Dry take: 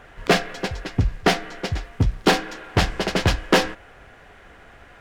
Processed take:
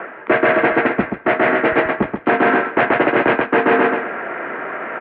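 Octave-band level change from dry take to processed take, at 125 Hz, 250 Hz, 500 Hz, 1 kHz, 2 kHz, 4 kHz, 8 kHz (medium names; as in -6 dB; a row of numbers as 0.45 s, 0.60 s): -8.0 dB, +7.0 dB, +9.0 dB, +8.5 dB, +9.5 dB, -8.0 dB, under -40 dB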